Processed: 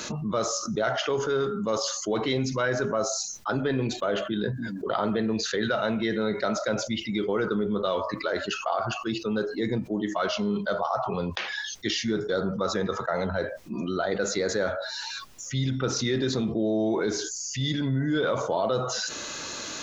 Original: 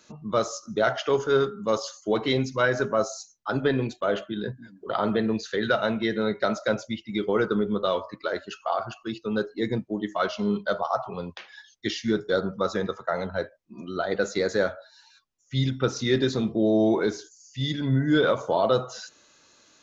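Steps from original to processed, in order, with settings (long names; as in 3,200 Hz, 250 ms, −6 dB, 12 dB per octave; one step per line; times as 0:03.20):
envelope flattener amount 70%
level −6 dB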